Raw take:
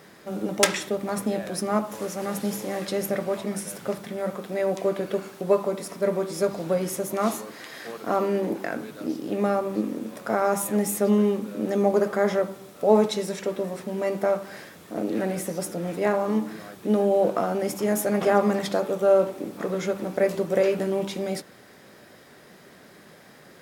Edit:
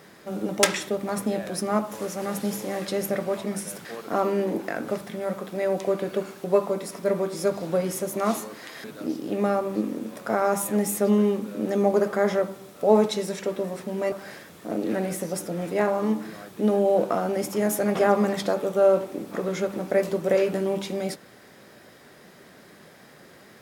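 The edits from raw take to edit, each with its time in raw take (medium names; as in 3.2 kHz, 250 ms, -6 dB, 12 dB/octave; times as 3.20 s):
7.81–8.84 s: move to 3.85 s
14.12–14.38 s: delete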